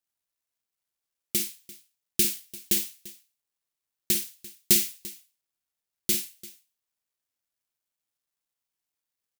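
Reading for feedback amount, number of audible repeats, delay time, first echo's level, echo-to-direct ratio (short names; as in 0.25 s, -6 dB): no steady repeat, 2, 52 ms, -10.0 dB, -9.5 dB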